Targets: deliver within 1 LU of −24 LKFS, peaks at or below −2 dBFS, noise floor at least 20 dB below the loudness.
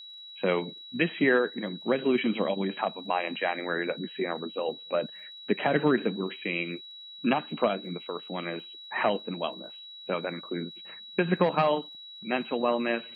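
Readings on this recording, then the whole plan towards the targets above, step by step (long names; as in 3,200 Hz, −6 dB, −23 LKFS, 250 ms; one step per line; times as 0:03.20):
crackle rate 37 per second; interfering tone 3,900 Hz; level of the tone −43 dBFS; integrated loudness −29.5 LKFS; sample peak −11.5 dBFS; target loudness −24.0 LKFS
→ click removal
notch filter 3,900 Hz, Q 30
level +5.5 dB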